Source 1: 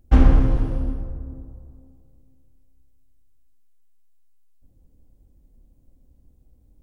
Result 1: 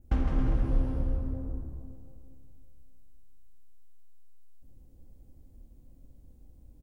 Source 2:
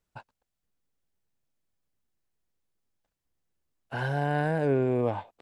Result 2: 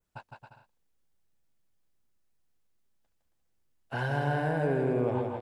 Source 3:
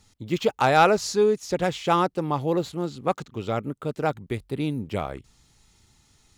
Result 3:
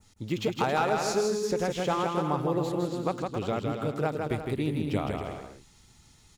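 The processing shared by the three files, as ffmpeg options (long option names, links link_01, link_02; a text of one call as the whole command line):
ffmpeg -i in.wav -af "adynamicequalizer=threshold=0.00501:dfrequency=4000:dqfactor=0.94:tfrequency=4000:tqfactor=0.94:attack=5:release=100:ratio=0.375:range=2:mode=cutabove:tftype=bell,acompressor=threshold=-26dB:ratio=4,aecho=1:1:160|272|350.4|405.3|443.7:0.631|0.398|0.251|0.158|0.1" out.wav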